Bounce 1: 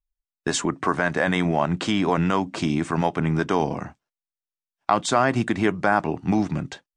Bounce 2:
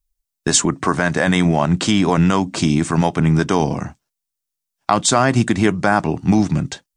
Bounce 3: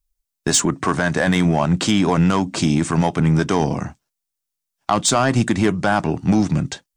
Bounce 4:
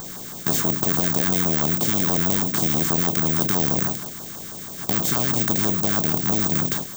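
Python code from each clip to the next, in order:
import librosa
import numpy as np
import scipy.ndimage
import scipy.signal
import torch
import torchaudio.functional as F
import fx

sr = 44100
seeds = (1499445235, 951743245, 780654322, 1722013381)

y1 = fx.bass_treble(x, sr, bass_db=6, treble_db=10)
y1 = F.gain(torch.from_numpy(y1), 3.5).numpy()
y2 = 10.0 ** (-6.5 / 20.0) * np.tanh(y1 / 10.0 ** (-6.5 / 20.0))
y3 = fx.bin_compress(y2, sr, power=0.2)
y3 = (np.kron(scipy.signal.resample_poly(y3, 1, 2), np.eye(2)[0]) * 2)[:len(y3)]
y3 = fx.filter_lfo_notch(y3, sr, shape='saw_down', hz=6.2, low_hz=440.0, high_hz=2700.0, q=0.8)
y3 = F.gain(torch.from_numpy(y3), -14.5).numpy()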